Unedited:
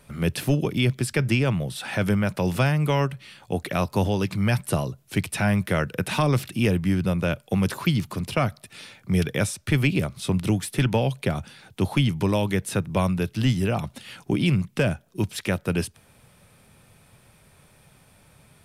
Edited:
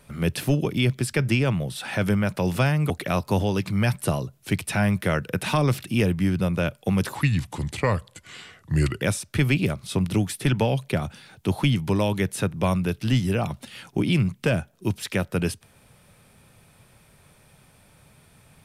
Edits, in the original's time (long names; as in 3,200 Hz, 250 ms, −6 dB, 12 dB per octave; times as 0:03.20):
0:02.90–0:03.55: remove
0:07.80–0:09.35: play speed 83%